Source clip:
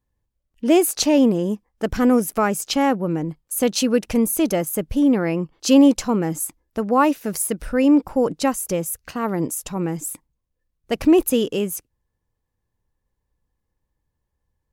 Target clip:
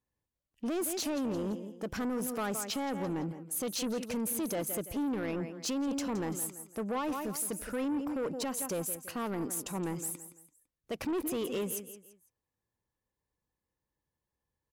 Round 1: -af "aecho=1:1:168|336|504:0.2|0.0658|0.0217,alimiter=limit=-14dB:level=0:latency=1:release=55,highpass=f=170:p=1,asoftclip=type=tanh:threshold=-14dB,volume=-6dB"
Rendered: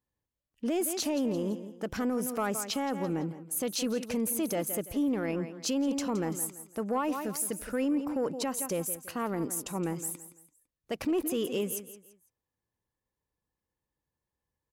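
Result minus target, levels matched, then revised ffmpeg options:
soft clip: distortion -12 dB
-af "aecho=1:1:168|336|504:0.2|0.0658|0.0217,alimiter=limit=-14dB:level=0:latency=1:release=55,highpass=f=170:p=1,asoftclip=type=tanh:threshold=-23dB,volume=-6dB"

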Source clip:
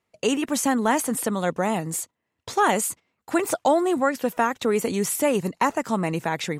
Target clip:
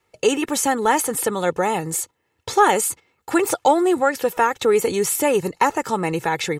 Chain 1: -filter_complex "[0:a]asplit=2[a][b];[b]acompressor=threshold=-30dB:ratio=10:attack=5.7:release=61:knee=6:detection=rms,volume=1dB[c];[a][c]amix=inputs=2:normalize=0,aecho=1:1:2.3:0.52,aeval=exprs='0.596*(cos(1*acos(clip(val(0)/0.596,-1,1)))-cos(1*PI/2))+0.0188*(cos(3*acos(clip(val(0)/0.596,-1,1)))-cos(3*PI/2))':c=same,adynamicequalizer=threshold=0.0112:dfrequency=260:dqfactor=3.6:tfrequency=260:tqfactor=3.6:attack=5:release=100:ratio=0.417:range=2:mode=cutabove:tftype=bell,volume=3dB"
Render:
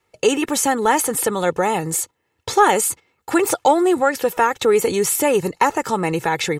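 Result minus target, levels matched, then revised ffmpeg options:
compressor: peak gain reduction -10 dB
-filter_complex "[0:a]asplit=2[a][b];[b]acompressor=threshold=-41dB:ratio=10:attack=5.7:release=61:knee=6:detection=rms,volume=1dB[c];[a][c]amix=inputs=2:normalize=0,aecho=1:1:2.3:0.52,aeval=exprs='0.596*(cos(1*acos(clip(val(0)/0.596,-1,1)))-cos(1*PI/2))+0.0188*(cos(3*acos(clip(val(0)/0.596,-1,1)))-cos(3*PI/2))':c=same,adynamicequalizer=threshold=0.0112:dfrequency=260:dqfactor=3.6:tfrequency=260:tqfactor=3.6:attack=5:release=100:ratio=0.417:range=2:mode=cutabove:tftype=bell,volume=3dB"

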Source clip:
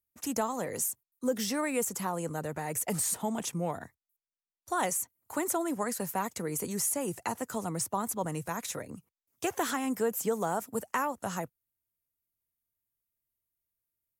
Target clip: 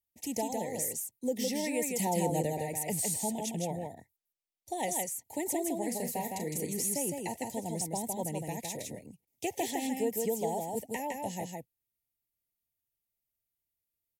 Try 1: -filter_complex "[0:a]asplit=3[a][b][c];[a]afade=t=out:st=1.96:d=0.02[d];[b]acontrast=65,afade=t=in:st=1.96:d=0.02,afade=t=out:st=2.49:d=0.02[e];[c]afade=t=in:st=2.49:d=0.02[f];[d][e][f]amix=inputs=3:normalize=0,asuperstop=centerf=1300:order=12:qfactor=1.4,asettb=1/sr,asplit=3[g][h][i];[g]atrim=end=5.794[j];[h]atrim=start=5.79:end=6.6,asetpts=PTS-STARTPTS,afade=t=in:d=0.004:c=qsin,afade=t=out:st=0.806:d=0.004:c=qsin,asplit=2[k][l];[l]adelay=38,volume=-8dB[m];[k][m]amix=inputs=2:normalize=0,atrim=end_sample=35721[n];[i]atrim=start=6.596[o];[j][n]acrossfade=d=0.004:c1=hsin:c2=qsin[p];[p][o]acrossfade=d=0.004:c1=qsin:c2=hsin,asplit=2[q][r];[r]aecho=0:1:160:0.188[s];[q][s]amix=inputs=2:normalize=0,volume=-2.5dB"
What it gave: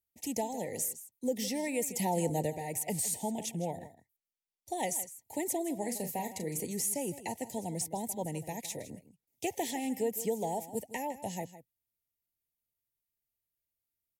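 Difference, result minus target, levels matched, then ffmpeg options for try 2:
echo-to-direct -11 dB
-filter_complex "[0:a]asplit=3[a][b][c];[a]afade=t=out:st=1.96:d=0.02[d];[b]acontrast=65,afade=t=in:st=1.96:d=0.02,afade=t=out:st=2.49:d=0.02[e];[c]afade=t=in:st=2.49:d=0.02[f];[d][e][f]amix=inputs=3:normalize=0,asuperstop=centerf=1300:order=12:qfactor=1.4,asettb=1/sr,asplit=3[g][h][i];[g]atrim=end=5.794[j];[h]atrim=start=5.79:end=6.6,asetpts=PTS-STARTPTS,afade=t=in:d=0.004:c=qsin,afade=t=out:st=0.806:d=0.004:c=qsin,asplit=2[k][l];[l]adelay=38,volume=-8dB[m];[k][m]amix=inputs=2:normalize=0,atrim=end_sample=35721[n];[i]atrim=start=6.596[o];[j][n]acrossfade=d=0.004:c1=hsin:c2=qsin[p];[p][o]acrossfade=d=0.004:c1=qsin:c2=hsin,asplit=2[q][r];[r]aecho=0:1:160:0.668[s];[q][s]amix=inputs=2:normalize=0,volume=-2.5dB"

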